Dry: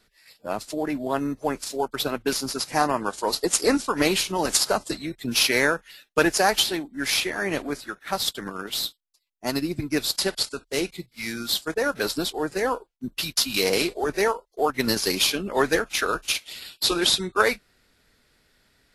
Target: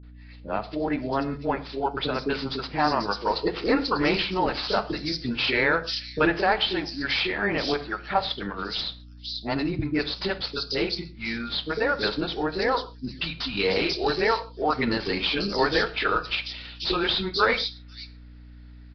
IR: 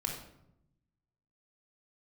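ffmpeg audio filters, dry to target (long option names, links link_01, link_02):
-filter_complex "[0:a]asettb=1/sr,asplit=3[link_01][link_02][link_03];[link_01]atrim=end=7.644[link_04];[link_02]atrim=start=7.64:end=8.2,asetpts=PTS-STARTPTS,afade=type=in:duration=0.004:curve=qsin,afade=type=out:start_time=0.556:duration=0.004:curve=qsin,equalizer=frequency=720:width=1.2:gain=8.5[link_05];[link_03]atrim=start=8.196[link_06];[link_04][link_05]acrossfade=duration=0.004:curve1=hsin:curve2=qsin[link_07];[link_07][link_06]acrossfade=duration=0.004:curve1=qsin:curve2=hsin,asplit=2[link_08][link_09];[link_09]alimiter=limit=-13.5dB:level=0:latency=1:release=25,volume=3dB[link_10];[link_08][link_10]amix=inputs=2:normalize=0,acrossover=split=410|4200[link_11][link_12][link_13];[link_12]adelay=30[link_14];[link_13]adelay=520[link_15];[link_11][link_14][link_15]amix=inputs=3:normalize=0,aeval=exprs='val(0)+0.0112*(sin(2*PI*60*n/s)+sin(2*PI*2*60*n/s)/2+sin(2*PI*3*60*n/s)/3+sin(2*PI*4*60*n/s)/4+sin(2*PI*5*60*n/s)/5)':channel_layout=same,asplit=2[link_16][link_17];[1:a]atrim=start_sample=2205,atrim=end_sample=6615[link_18];[link_17][link_18]afir=irnorm=-1:irlink=0,volume=-10dB[link_19];[link_16][link_19]amix=inputs=2:normalize=0,aresample=11025,aresample=44100,volume=-8dB"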